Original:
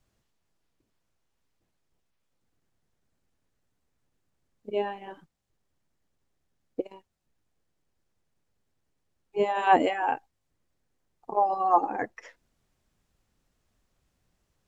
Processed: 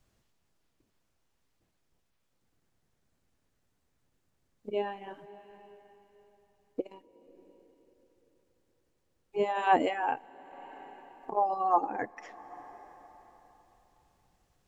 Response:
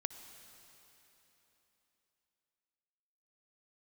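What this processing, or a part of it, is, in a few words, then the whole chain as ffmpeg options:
ducked reverb: -filter_complex "[0:a]asplit=3[s0][s1][s2];[1:a]atrim=start_sample=2205[s3];[s1][s3]afir=irnorm=-1:irlink=0[s4];[s2]apad=whole_len=647039[s5];[s4][s5]sidechaincompress=threshold=0.0112:ratio=12:attack=7.2:release=504,volume=1.26[s6];[s0][s6]amix=inputs=2:normalize=0,volume=0.596"

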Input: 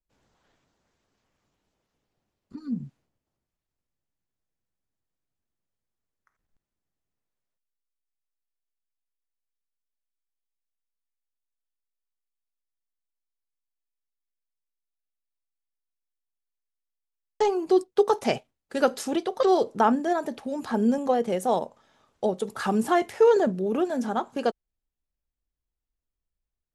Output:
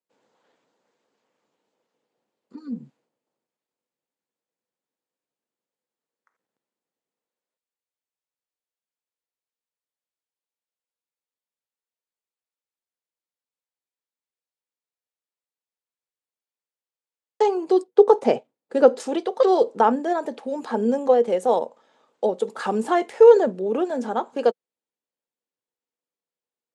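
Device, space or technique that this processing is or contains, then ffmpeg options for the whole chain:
television speaker: -filter_complex "[0:a]highpass=f=180:w=0.5412,highpass=f=180:w=1.3066,equalizer=f=180:t=q:w=4:g=-4,equalizer=f=490:t=q:w=4:g=9,equalizer=f=900:t=q:w=4:g=4,equalizer=f=5700:t=q:w=4:g=-4,lowpass=f=9000:w=0.5412,lowpass=f=9000:w=1.3066,asettb=1/sr,asplit=3[s0][s1][s2];[s0]atrim=end=17.884[s3];[s1]atrim=start=17.88:end=19,asetpts=PTS-STARTPTS,afade=t=in:d=0.004:c=qsin,afade=t=out:st=1.116:d=0.004:c=qsin,tiltshelf=f=970:g=5.5[s4];[s2]atrim=start=18.996[s5];[s3][s4]acrossfade=d=0.004:c1=hsin:c2=qsin[s6];[s6][s5]acrossfade=d=0.004:c1=qsin:c2=hsin"

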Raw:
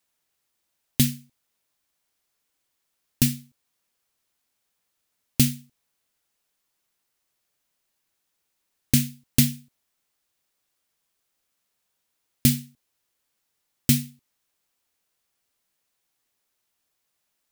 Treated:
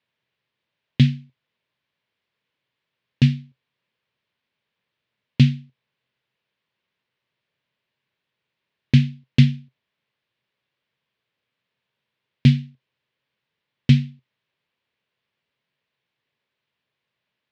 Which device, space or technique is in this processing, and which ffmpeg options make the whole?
guitar cabinet: -af "highpass=100,equalizer=f=130:t=q:w=4:g=8,equalizer=f=300:t=q:w=4:g=-6,equalizer=f=760:t=q:w=4:g=-8,equalizer=f=1300:t=q:w=4:g=-6,lowpass=f=3500:w=0.5412,lowpass=f=3500:w=1.3066,volume=1.68"

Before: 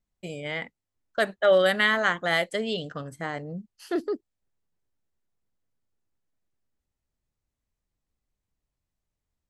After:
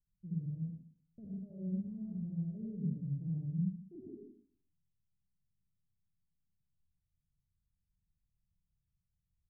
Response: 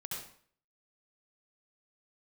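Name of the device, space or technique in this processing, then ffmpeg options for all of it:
club heard from the street: -filter_complex "[0:a]asettb=1/sr,asplit=3[s0][s1][s2];[s0]atrim=end=2.504[s3];[s1]atrim=start=2.5:end=3.48,asetpts=PTS-STARTPTS,afade=t=in:d=0.004:c=qsin,afade=t=out:st=0.976:d=0.004:c=qsin,equalizer=f=560:t=o:w=1.2:g=5[s4];[s2]atrim=start=3.476[s5];[s3][s4]acrossfade=d=0.004:c1=hsin:c2=qsin[s6];[s6][s5]acrossfade=d=0.004:c1=qsin:c2=hsin,alimiter=limit=0.168:level=0:latency=1:release=11,lowpass=f=190:w=0.5412,lowpass=f=190:w=1.3066[s7];[1:a]atrim=start_sample=2205[s8];[s7][s8]afir=irnorm=-1:irlink=0,volume=1.12"

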